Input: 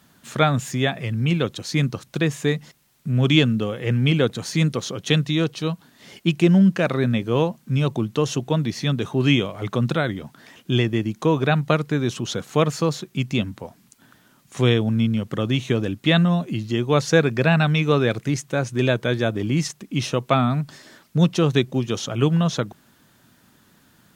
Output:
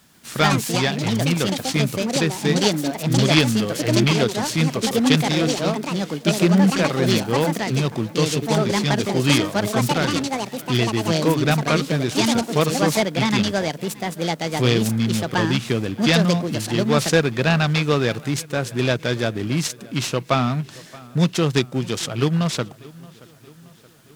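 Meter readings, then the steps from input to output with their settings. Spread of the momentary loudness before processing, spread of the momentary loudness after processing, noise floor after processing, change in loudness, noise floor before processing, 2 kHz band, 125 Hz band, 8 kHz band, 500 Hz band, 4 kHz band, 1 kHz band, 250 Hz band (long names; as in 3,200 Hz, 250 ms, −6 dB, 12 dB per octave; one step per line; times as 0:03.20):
9 LU, 7 LU, −45 dBFS, +1.5 dB, −58 dBFS, +2.5 dB, −0.5 dB, +8.0 dB, +1.5 dB, +4.5 dB, +3.5 dB, +1.5 dB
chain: high-shelf EQ 3,500 Hz +8 dB
delay with pitch and tempo change per echo 139 ms, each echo +5 semitones, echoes 2
on a send: delay with a low-pass on its return 625 ms, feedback 55%, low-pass 3,600 Hz, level −22 dB
on the sum: short delay modulated by noise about 1,300 Hz, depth 0.031 ms
level −1 dB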